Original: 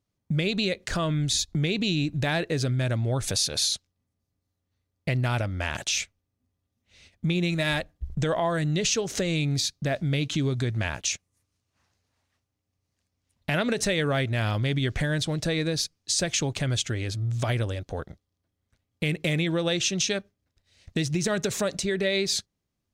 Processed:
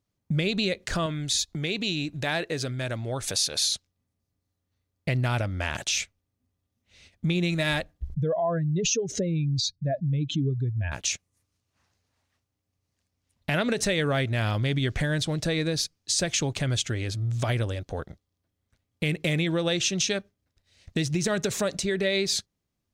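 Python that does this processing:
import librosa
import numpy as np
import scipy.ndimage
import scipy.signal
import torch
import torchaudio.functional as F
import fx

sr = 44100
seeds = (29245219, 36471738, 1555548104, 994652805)

y = fx.low_shelf(x, sr, hz=250.0, db=-9.0, at=(1.06, 3.67))
y = fx.spec_expand(y, sr, power=2.1, at=(8.14, 10.92))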